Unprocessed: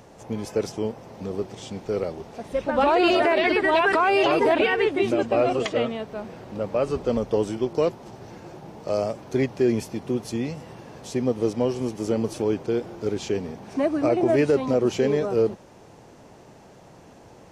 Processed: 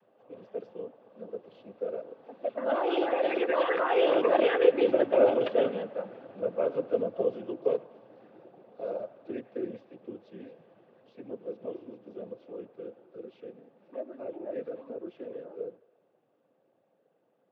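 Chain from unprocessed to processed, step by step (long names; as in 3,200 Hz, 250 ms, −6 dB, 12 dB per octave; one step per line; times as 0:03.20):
source passing by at 0:05.19, 16 m/s, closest 20 metres
high-frequency loss of the air 100 metres
cochlear-implant simulation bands 16
loudspeaker in its box 240–3,300 Hz, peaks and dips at 520 Hz +8 dB, 920 Hz −5 dB, 2,100 Hz −6 dB
delay with a band-pass on its return 107 ms, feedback 54%, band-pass 1,300 Hz, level −15.5 dB
level −3 dB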